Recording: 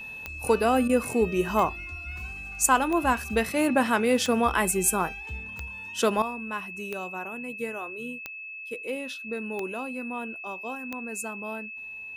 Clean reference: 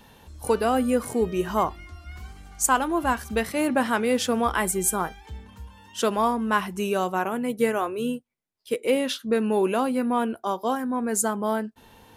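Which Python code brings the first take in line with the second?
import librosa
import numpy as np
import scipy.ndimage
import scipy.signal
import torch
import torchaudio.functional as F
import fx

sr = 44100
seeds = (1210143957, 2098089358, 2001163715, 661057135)

y = fx.fix_declick_ar(x, sr, threshold=10.0)
y = fx.notch(y, sr, hz=2600.0, q=30.0)
y = fx.fix_interpolate(y, sr, at_s=(0.88,), length_ms=12.0)
y = fx.fix_level(y, sr, at_s=6.22, step_db=11.0)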